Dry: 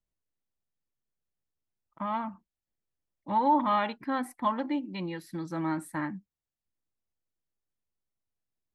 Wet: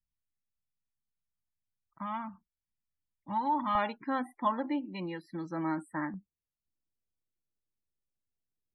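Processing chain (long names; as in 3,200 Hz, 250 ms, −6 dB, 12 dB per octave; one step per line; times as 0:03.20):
parametric band 460 Hz −14.5 dB 1.2 octaves, from 0:03.75 74 Hz, from 0:06.14 1,500 Hz
spectral peaks only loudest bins 64
low-pass filter 10,000 Hz
high-shelf EQ 6,600 Hz −11 dB
level −1 dB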